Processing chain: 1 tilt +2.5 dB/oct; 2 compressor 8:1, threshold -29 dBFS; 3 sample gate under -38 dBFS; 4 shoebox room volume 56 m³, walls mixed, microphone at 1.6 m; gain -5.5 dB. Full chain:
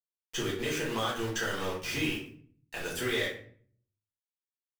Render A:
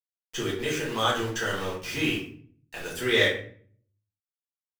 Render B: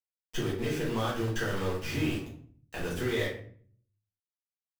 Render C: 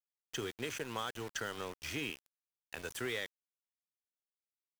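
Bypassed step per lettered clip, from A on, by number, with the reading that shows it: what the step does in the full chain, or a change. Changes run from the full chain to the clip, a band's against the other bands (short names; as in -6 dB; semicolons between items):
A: 2, mean gain reduction 3.0 dB; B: 1, 125 Hz band +8.5 dB; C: 4, echo-to-direct 7.0 dB to none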